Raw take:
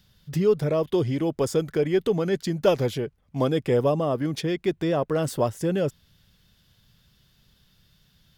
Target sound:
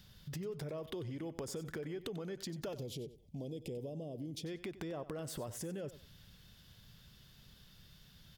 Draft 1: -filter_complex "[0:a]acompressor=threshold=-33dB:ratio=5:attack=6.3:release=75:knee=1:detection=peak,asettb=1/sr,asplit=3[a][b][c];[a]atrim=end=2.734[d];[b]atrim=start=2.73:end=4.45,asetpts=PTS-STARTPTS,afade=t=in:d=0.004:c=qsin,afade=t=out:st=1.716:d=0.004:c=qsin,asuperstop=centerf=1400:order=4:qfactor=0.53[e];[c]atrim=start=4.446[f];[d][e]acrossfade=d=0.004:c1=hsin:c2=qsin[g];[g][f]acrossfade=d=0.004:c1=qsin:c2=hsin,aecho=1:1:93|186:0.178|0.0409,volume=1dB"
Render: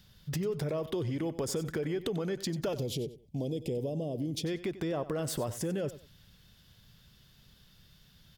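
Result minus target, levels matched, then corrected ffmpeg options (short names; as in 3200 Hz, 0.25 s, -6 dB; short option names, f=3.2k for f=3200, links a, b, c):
compressor: peak gain reduction -9 dB
-filter_complex "[0:a]acompressor=threshold=-44.5dB:ratio=5:attack=6.3:release=75:knee=1:detection=peak,asettb=1/sr,asplit=3[a][b][c];[a]atrim=end=2.734[d];[b]atrim=start=2.73:end=4.45,asetpts=PTS-STARTPTS,afade=t=in:d=0.004:c=qsin,afade=t=out:st=1.716:d=0.004:c=qsin,asuperstop=centerf=1400:order=4:qfactor=0.53[e];[c]atrim=start=4.446[f];[d][e]acrossfade=d=0.004:c1=hsin:c2=qsin[g];[g][f]acrossfade=d=0.004:c1=qsin:c2=hsin,aecho=1:1:93|186:0.178|0.0409,volume=1dB"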